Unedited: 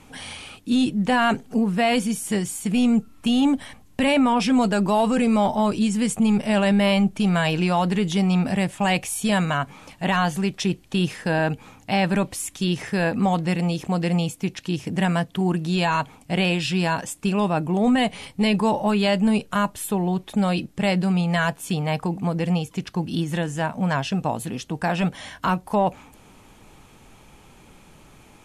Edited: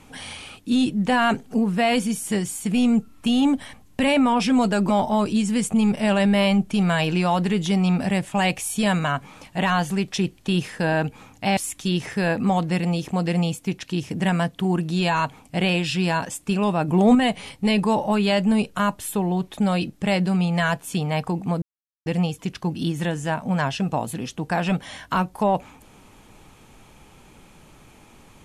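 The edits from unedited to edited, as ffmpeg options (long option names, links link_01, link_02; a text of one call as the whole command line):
ffmpeg -i in.wav -filter_complex "[0:a]asplit=6[link_01][link_02][link_03][link_04][link_05][link_06];[link_01]atrim=end=4.892[link_07];[link_02]atrim=start=5.348:end=12.032[link_08];[link_03]atrim=start=12.328:end=17.642[link_09];[link_04]atrim=start=17.638:end=17.912,asetpts=PTS-STARTPTS,volume=4.5dB[link_10];[link_05]atrim=start=17.908:end=22.38,asetpts=PTS-STARTPTS,afade=type=out:start_time=4.468:duration=0.004:curve=hsin,apad=pad_dur=0.44[link_11];[link_06]atrim=start=22.38,asetpts=PTS-STARTPTS,afade=type=in:duration=0.004:curve=hsin[link_12];[link_07][link_08]acrossfade=duration=0.004:curve1=hsin:curve2=hsin[link_13];[link_13][link_09]acrossfade=duration=0.004:curve1=hsin:curve2=hsin[link_14];[link_14][link_10]acrossfade=duration=0.004:curve1=hsin:curve2=hsin[link_15];[link_11][link_12]concat=n=2:v=0:a=1[link_16];[link_15][link_16]acrossfade=duration=0.004:curve1=hsin:curve2=hsin" out.wav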